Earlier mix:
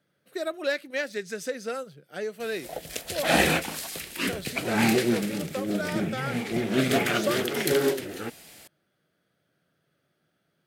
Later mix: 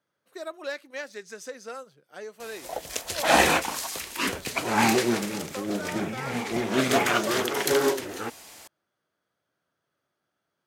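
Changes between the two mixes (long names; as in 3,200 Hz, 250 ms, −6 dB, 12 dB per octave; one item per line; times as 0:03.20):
speech −8.0 dB
master: add graphic EQ with 15 bands 160 Hz −7 dB, 1,000 Hz +11 dB, 6,300 Hz +6 dB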